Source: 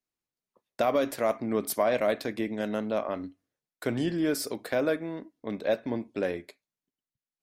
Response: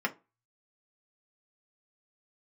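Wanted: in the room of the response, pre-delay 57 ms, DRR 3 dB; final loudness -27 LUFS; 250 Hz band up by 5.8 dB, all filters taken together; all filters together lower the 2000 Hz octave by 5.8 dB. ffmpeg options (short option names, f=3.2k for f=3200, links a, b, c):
-filter_complex "[0:a]equalizer=f=250:t=o:g=7.5,equalizer=f=2k:t=o:g=-8,asplit=2[a][b];[1:a]atrim=start_sample=2205,adelay=57[c];[b][c]afir=irnorm=-1:irlink=0,volume=-11dB[d];[a][d]amix=inputs=2:normalize=0,volume=-1dB"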